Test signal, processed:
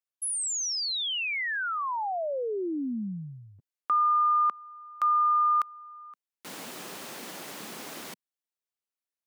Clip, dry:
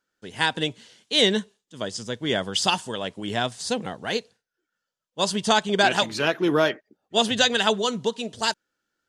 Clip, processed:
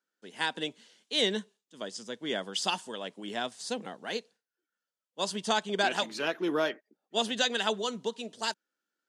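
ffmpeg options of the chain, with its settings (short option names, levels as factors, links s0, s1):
-af "highpass=f=190:w=0.5412,highpass=f=190:w=1.3066,volume=0.398"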